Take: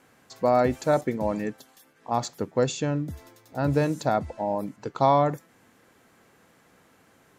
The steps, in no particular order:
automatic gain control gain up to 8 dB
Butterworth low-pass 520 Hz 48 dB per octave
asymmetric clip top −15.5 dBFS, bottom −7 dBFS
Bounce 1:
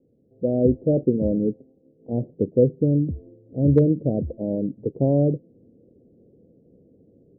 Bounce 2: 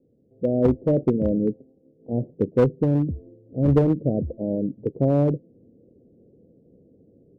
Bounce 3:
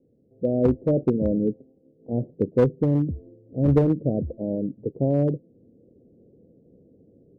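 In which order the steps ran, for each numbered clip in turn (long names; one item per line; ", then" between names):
Butterworth low-pass, then asymmetric clip, then automatic gain control
Butterworth low-pass, then automatic gain control, then asymmetric clip
automatic gain control, then Butterworth low-pass, then asymmetric clip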